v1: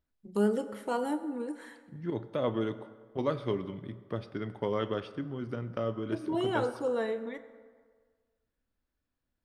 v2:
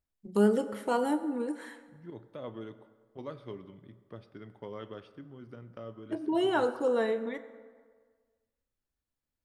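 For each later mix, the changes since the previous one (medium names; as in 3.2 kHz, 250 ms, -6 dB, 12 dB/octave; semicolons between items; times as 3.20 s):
first voice +3.0 dB; second voice -11.0 dB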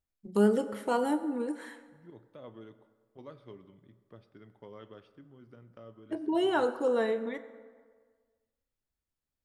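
second voice -6.5 dB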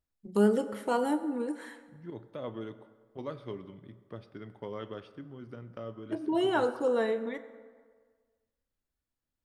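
second voice +9.0 dB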